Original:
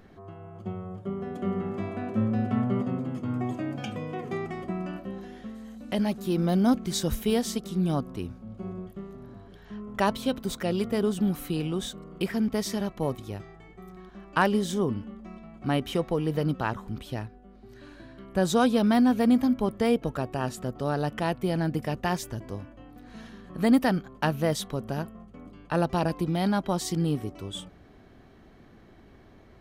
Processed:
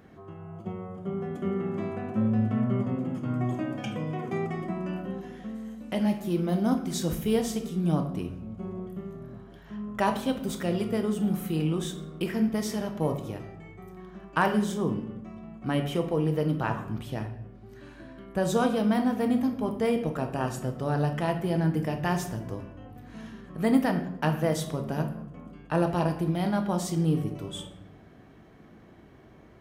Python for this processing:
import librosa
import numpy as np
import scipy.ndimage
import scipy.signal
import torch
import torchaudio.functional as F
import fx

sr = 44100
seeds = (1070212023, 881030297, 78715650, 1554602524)

p1 = scipy.signal.sosfilt(scipy.signal.butter(2, 57.0, 'highpass', fs=sr, output='sos'), x)
p2 = fx.peak_eq(p1, sr, hz=4200.0, db=-5.5, octaves=0.55)
p3 = fx.rider(p2, sr, range_db=4, speed_s=0.5)
p4 = p2 + (p3 * librosa.db_to_amplitude(-1.5))
p5 = fx.room_shoebox(p4, sr, seeds[0], volume_m3=210.0, walls='mixed', distance_m=0.57)
y = p5 * librosa.db_to_amplitude(-7.5)